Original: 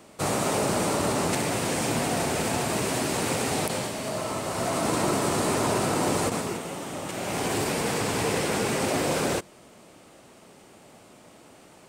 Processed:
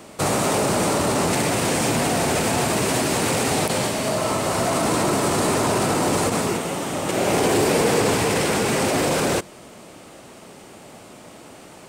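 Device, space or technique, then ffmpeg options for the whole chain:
soft clipper into limiter: -filter_complex "[0:a]asoftclip=type=tanh:threshold=-15.5dB,alimiter=limit=-21.5dB:level=0:latency=1:release=30,asettb=1/sr,asplit=3[link_01][link_02][link_03];[link_01]atrim=end=7.074[link_04];[link_02]atrim=start=7.07:end=8.14,asetpts=PTS-STARTPTS,afade=type=in:duration=0.004:curve=qsin,afade=type=out:start_time=1.066:duration=0.004:curve=qsin,equalizer=frequency=430:width_type=o:width=1.2:gain=5.5[link_05];[link_03]atrim=start=8.136[link_06];[link_04][link_05]acrossfade=duration=0.004:curve1=hsin:curve2=qsin[link_07];[link_07][link_06]acrossfade=duration=0.004:curve1=qsin:curve2=hsin,volume=8.5dB"

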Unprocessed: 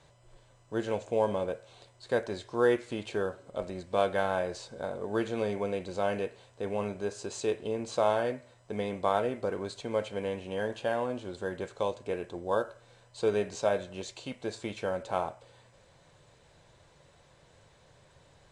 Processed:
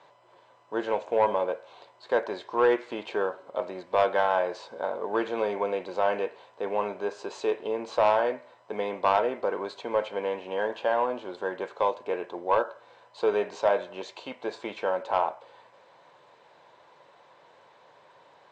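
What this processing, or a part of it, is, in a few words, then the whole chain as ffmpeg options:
intercom: -af "highpass=360,lowpass=4500,equalizer=frequency=960:width_type=o:width=0.55:gain=7.5,highshelf=frequency=4600:gain=-7,asoftclip=type=tanh:threshold=-17.5dB,volume=5dB"

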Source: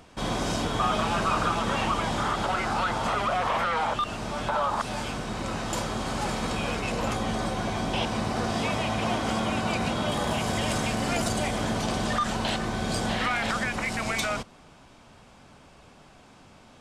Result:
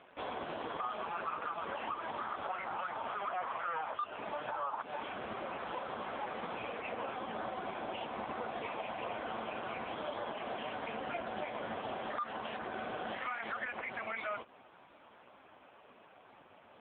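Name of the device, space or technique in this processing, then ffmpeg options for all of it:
voicemail: -af "highpass=360,lowpass=2900,acompressor=threshold=-34dB:ratio=6,volume=1dB" -ar 8000 -c:a libopencore_amrnb -b:a 5150

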